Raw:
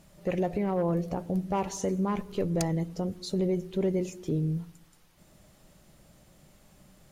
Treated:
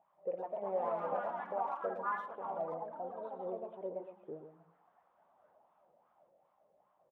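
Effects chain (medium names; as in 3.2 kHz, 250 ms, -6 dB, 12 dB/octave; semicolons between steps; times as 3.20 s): single-diode clipper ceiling -19.5 dBFS; peaking EQ 780 Hz +6.5 dB 0.89 oct; 0.63–1.19 s: waveshaping leveller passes 2; wah-wah 2.5 Hz 490–1100 Hz, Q 6.6; on a send: delay 124 ms -8.5 dB; on the sum: ever faster or slower copies 299 ms, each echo +3 st, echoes 3; resampled via 8 kHz; speakerphone echo 110 ms, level -18 dB; trim -2.5 dB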